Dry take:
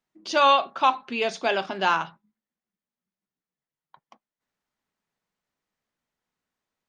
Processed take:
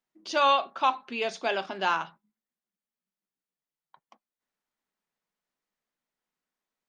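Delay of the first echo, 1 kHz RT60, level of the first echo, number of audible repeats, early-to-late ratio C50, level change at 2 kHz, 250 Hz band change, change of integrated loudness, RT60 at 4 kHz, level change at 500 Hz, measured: no echo audible, no reverb audible, no echo audible, no echo audible, no reverb audible, −4.0 dB, −5.5 dB, −4.0 dB, no reverb audible, −4.5 dB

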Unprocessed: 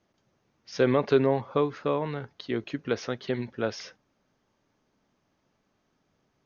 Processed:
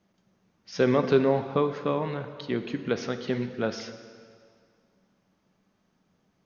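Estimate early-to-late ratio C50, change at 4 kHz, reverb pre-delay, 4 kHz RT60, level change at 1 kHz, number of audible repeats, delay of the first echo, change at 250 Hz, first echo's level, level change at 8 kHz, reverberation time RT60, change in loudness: 10.0 dB, +0.5 dB, 6 ms, 1.9 s, +1.0 dB, no echo audible, no echo audible, +1.5 dB, no echo audible, can't be measured, 2.2 s, +0.5 dB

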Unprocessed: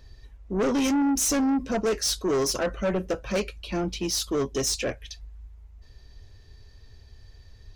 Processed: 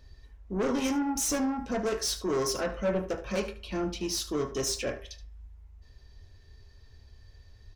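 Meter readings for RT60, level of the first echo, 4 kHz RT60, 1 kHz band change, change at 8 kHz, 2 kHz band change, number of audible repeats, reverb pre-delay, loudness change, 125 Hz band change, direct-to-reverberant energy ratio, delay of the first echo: 0.45 s, −15.0 dB, 0.45 s, −3.0 dB, −4.5 dB, −4.0 dB, 1, 18 ms, −4.5 dB, −4.0 dB, 4.5 dB, 75 ms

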